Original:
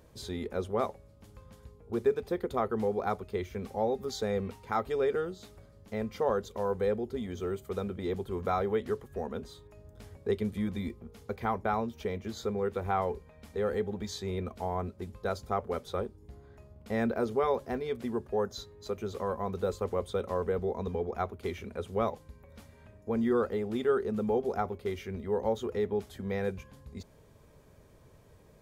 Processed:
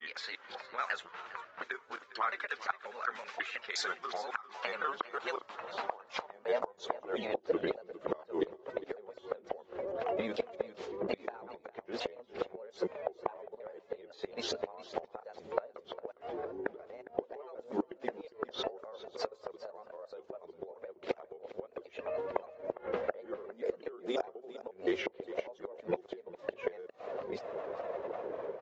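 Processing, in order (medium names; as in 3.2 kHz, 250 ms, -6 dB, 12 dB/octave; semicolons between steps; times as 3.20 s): slices played last to first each 179 ms, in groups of 3; level-controlled noise filter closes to 1.5 kHz, open at -25.5 dBFS; peaking EQ 77 Hz +4.5 dB 0.39 oct; level rider gain up to 12 dB; peak limiter -11.5 dBFS, peak gain reduction 6.5 dB; compression 6:1, threshold -34 dBFS, peak gain reduction 17.5 dB; high-pass sweep 1.5 kHz -> 520 Hz, 3.78–7.73 s; granulator 100 ms, grains 20 per s, spray 18 ms, pitch spread up and down by 3 st; inverted gate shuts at -28 dBFS, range -24 dB; on a send: delay 406 ms -16 dB; on the sum: resampled via 16 kHz; trim +8.5 dB; AAC 32 kbps 48 kHz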